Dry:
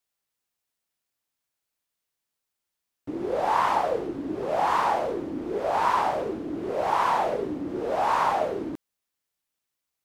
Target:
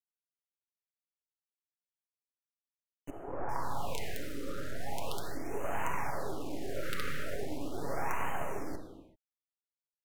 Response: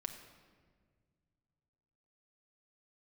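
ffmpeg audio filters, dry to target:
-filter_complex "[0:a]adynamicequalizer=threshold=0.00891:dfrequency=1600:dqfactor=1.6:tfrequency=1600:tqfactor=1.6:attack=5:release=100:ratio=0.375:range=3:mode=boostabove:tftype=bell,acompressor=threshold=-25dB:ratio=4,acrusher=bits=4:dc=4:mix=0:aa=0.000001,asettb=1/sr,asplit=3[a][b][c];[a]atrim=end=3.104[d];[b]atrim=start=3.1:end=5.37,asetpts=PTS-STARTPTS,afade=t=in:d=0.004:c=qsin,afade=t=out:st=2.266:d=0.004:c=qsin,acrossover=split=360|1600[e][f][g];[e]adelay=180[h];[g]adelay=390[i];[h][f][i]amix=inputs=3:normalize=0,atrim=end_sample=100107[j];[c]atrim=start=5.366[k];[d][j]acrossfade=d=0.004:c1=hsin:c2=qsin[l];[l][k]acrossfade=d=0.004:c1=qsin:c2=hsin[m];[1:a]atrim=start_sample=2205,afade=t=out:st=0.34:d=0.01,atrim=end_sample=15435,asetrate=32193,aresample=44100[n];[m][n]afir=irnorm=-1:irlink=0,afftfilt=real='re*(1-between(b*sr/1024,810*pow(4400/810,0.5+0.5*sin(2*PI*0.39*pts/sr))/1.41,810*pow(4400/810,0.5+0.5*sin(2*PI*0.39*pts/sr))*1.41))':imag='im*(1-between(b*sr/1024,810*pow(4400/810,0.5+0.5*sin(2*PI*0.39*pts/sr))/1.41,810*pow(4400/810,0.5+0.5*sin(2*PI*0.39*pts/sr))*1.41))':win_size=1024:overlap=0.75,volume=-4dB"

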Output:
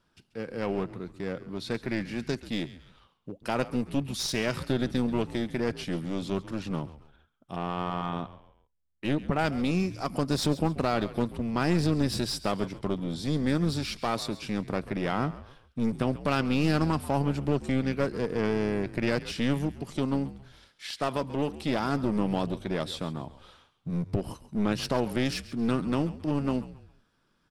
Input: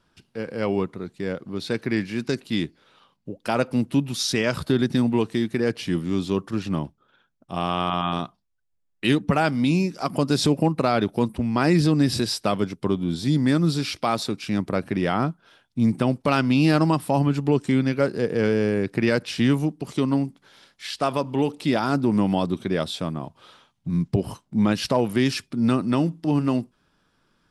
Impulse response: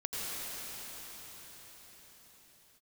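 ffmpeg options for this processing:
-filter_complex "[0:a]aeval=exprs='clip(val(0),-1,0.0631)':c=same,asettb=1/sr,asplit=3[a][b][c];[a]atrim=end=7.564[d];[b]atrim=start=7.56:end=9.39,asetpts=PTS-STARTPTS,afade=t=in:d=0.004:c=qsin,afade=t=out:st=1.826:d=0.004:c=qsin,highshelf=f=2.5k:g=-12[e];[c]atrim=start=9.386[f];[d][e]acrossfade=d=0.004:c1=hsin:c2=qsin[g];[g][f]acrossfade=d=0.004:c1=qsin:c2=hsin,asplit=4[h][i][j][k];[i]adelay=136,afreqshift=-76,volume=-16dB[l];[j]adelay=272,afreqshift=-152,volume=-24.4dB[m];[k]adelay=408,afreqshift=-228,volume=-32.8dB[n];[h][l][m][n]amix=inputs=4:normalize=0,volume=-5dB"

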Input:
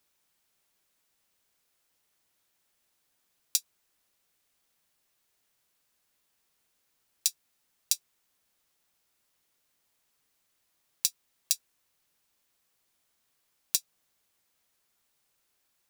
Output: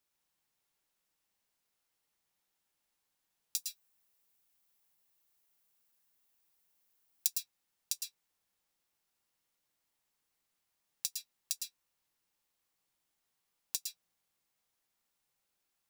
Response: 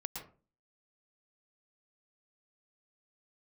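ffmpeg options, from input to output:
-filter_complex "[0:a]asettb=1/sr,asplit=3[a][b][c];[a]atrim=end=3.564[d];[b]atrim=start=3.56:end=7.27,asetpts=PTS-STARTPTS,afade=t=in:d=0.004:c=qsin,afade=t=out:st=3.706:d=0.004:c=qsin,highshelf=f=11k:g=12[e];[c]atrim=start=7.266[f];[d][e]acrossfade=d=0.004:c1=hsin:c2=qsin[g];[g][f]acrossfade=d=0.004:c1=qsin:c2=hsin[h];[1:a]atrim=start_sample=2205,afade=t=out:st=0.21:d=0.01,atrim=end_sample=9702[i];[h][i]afir=irnorm=-1:irlink=0,volume=-6dB"

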